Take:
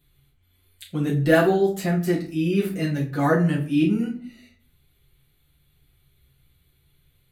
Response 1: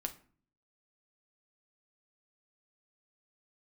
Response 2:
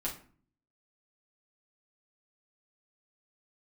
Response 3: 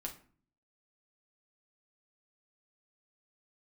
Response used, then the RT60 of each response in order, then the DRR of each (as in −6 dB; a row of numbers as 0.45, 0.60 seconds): 2; 0.45, 0.45, 0.45 seconds; 4.5, −5.5, 0.0 decibels